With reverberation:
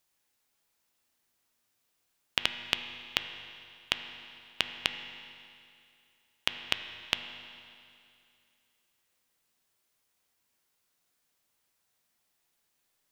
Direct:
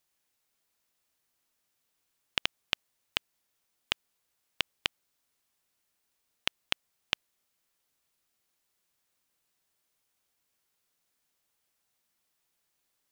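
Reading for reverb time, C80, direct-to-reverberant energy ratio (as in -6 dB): 2.5 s, 9.0 dB, 7.0 dB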